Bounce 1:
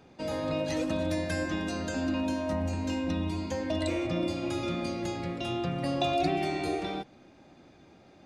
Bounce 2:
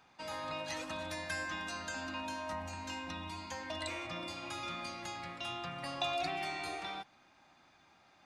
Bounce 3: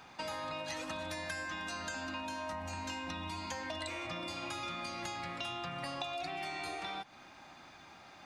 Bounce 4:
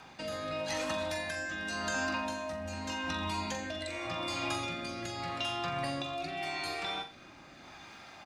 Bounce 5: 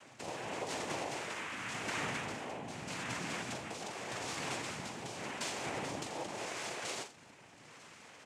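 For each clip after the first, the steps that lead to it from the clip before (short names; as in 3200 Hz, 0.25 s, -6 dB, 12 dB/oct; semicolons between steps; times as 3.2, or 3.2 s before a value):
resonant low shelf 670 Hz -12 dB, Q 1.5; gain -3 dB
compressor 6:1, threshold -48 dBFS, peak gain reduction 16.5 dB; gain +10 dB
rotary speaker horn 0.85 Hz; doubler 19 ms -12 dB; flutter echo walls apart 7.4 m, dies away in 0.34 s; gain +5.5 dB
noise vocoder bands 4; gain -4 dB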